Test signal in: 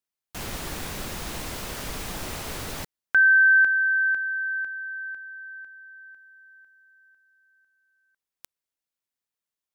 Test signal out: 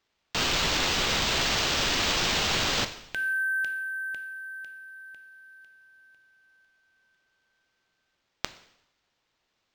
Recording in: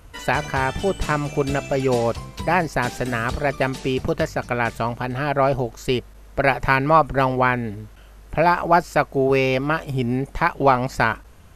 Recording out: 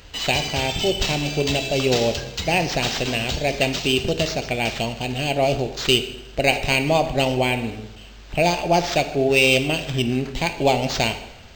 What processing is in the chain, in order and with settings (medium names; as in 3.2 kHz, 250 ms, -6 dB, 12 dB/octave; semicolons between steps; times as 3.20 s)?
FFT filter 760 Hz 0 dB, 1.3 kHz -23 dB, 2.8 kHz +15 dB; plate-style reverb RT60 0.99 s, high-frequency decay 0.8×, DRR 7.5 dB; decimation joined by straight lines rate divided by 4×; trim -1 dB